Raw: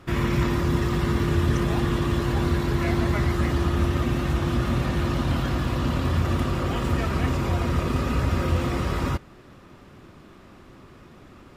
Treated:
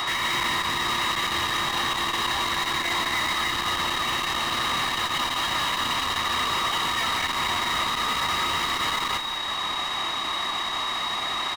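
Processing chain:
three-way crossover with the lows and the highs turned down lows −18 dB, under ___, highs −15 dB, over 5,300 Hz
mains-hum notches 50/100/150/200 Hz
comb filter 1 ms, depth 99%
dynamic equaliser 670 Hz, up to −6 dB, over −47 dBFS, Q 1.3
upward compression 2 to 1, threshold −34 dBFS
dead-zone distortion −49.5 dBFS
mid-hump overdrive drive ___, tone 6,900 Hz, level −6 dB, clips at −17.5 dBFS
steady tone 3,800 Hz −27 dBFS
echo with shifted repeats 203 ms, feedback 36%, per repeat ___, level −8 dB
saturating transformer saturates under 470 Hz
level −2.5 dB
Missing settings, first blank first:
470 Hz, 35 dB, −33 Hz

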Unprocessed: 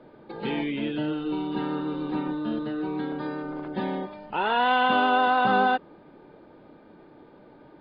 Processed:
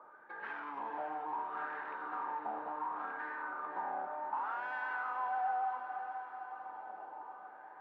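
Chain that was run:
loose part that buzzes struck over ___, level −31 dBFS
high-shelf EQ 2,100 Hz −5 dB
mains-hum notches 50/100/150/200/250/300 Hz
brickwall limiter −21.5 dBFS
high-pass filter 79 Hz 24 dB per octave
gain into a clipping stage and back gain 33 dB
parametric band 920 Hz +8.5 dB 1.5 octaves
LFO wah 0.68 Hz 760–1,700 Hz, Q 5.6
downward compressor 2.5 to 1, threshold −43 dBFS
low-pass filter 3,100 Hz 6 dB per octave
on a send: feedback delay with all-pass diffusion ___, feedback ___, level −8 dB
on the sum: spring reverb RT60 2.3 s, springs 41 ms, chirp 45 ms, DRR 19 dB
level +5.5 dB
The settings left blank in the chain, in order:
−33 dBFS, 515 ms, 61%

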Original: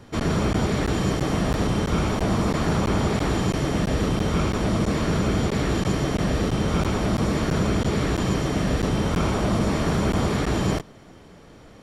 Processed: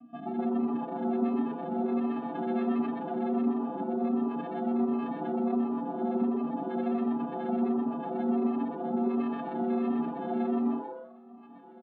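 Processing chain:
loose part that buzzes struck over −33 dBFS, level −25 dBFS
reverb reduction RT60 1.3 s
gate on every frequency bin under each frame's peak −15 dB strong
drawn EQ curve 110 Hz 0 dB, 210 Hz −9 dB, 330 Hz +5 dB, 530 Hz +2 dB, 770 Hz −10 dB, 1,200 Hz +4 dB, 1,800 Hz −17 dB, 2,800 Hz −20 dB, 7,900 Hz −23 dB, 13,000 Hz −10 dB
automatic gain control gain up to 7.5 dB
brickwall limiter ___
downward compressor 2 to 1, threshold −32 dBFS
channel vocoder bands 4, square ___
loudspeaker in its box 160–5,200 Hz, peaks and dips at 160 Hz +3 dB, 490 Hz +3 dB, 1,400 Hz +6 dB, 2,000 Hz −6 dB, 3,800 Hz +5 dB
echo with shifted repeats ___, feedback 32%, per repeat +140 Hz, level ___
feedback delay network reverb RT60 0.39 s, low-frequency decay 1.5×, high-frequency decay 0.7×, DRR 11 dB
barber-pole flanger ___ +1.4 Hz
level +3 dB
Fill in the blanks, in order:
−13 dBFS, 236 Hz, 125 ms, −6 dB, 4.6 ms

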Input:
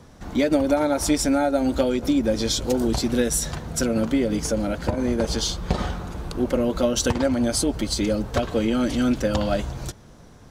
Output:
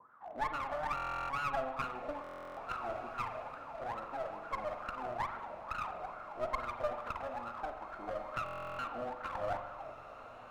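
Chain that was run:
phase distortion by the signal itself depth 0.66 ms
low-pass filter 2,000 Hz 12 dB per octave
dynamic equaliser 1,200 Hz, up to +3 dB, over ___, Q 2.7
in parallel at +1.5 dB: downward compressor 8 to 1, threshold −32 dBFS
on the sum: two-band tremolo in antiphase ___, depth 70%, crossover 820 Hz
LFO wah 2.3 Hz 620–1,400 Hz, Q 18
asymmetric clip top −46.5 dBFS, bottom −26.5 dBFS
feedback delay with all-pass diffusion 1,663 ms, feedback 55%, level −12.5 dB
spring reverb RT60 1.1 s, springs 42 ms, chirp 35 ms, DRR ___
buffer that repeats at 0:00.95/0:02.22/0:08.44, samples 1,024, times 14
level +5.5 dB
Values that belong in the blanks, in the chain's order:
−37 dBFS, 2 Hz, 7 dB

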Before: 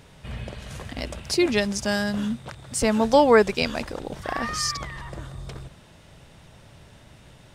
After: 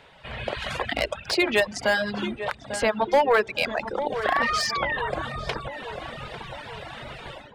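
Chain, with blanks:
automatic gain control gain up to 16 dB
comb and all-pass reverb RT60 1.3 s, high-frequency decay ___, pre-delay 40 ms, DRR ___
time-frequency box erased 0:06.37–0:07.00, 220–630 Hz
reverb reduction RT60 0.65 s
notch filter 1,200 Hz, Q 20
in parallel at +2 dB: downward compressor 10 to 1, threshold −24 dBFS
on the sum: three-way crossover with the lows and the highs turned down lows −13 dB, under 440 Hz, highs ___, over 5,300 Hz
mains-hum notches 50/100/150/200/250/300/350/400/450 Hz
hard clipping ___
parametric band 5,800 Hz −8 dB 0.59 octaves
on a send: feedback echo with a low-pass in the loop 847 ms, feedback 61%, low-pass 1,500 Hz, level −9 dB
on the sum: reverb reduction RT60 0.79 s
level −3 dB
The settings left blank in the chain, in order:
0.5×, 12.5 dB, −18 dB, −10 dBFS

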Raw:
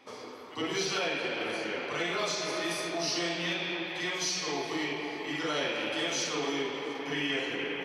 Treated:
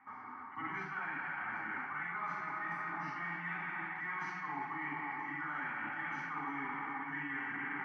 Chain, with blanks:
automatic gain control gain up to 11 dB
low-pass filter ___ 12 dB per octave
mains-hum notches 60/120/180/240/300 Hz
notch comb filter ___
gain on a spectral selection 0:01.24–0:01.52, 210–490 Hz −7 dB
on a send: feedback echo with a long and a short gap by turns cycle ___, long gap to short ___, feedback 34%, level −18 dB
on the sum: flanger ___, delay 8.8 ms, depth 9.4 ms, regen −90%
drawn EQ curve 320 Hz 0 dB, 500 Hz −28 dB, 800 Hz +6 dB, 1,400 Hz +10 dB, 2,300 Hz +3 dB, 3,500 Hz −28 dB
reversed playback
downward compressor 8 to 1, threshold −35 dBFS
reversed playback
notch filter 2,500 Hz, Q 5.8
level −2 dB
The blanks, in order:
8,300 Hz, 340 Hz, 1,297 ms, 3 to 1, 0.55 Hz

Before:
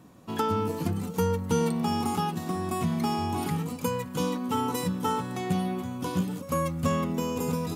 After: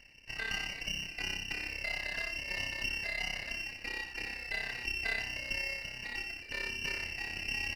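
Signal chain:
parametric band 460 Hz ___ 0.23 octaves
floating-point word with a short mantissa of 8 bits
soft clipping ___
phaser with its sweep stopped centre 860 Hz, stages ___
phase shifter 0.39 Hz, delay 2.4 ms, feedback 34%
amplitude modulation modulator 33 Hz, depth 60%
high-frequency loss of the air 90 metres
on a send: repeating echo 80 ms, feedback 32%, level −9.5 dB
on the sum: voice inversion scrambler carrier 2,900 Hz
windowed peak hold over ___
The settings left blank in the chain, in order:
−3.5 dB, −25 dBFS, 4, 5 samples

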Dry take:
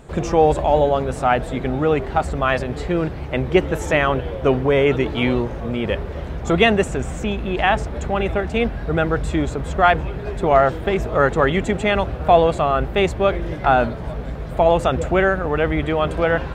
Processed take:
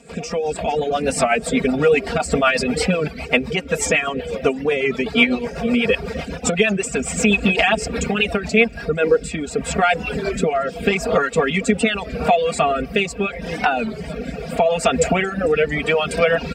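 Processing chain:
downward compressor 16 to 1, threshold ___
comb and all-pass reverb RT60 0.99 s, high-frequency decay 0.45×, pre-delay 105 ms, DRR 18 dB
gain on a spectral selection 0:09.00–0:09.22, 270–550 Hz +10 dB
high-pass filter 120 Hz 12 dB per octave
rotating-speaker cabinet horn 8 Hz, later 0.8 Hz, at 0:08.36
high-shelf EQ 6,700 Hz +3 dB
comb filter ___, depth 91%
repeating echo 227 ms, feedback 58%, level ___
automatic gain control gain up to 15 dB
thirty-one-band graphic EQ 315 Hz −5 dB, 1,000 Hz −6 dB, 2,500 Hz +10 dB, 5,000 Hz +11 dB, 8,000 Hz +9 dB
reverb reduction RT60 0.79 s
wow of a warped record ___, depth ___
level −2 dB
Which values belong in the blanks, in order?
−21 dBFS, 4.3 ms, −19.5 dB, 33 1/3 rpm, 100 cents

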